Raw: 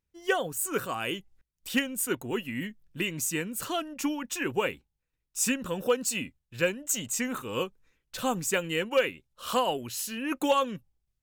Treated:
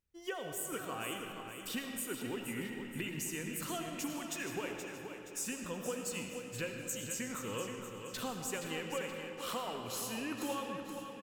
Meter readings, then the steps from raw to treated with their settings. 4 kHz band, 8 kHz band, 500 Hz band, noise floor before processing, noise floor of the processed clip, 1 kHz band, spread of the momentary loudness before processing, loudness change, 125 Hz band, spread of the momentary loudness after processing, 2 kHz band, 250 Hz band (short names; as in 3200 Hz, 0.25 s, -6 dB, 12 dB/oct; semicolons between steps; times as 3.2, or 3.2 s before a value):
-8.5 dB, -8.5 dB, -11.0 dB, -83 dBFS, -48 dBFS, -10.5 dB, 9 LU, -9.5 dB, -6.0 dB, 4 LU, -10.0 dB, -8.0 dB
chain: compressor 4:1, threshold -35 dBFS, peak gain reduction 14 dB; feedback echo 0.474 s, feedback 42%, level -8.5 dB; digital reverb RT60 2.5 s, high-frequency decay 0.7×, pre-delay 40 ms, DRR 3.5 dB; gain -3.5 dB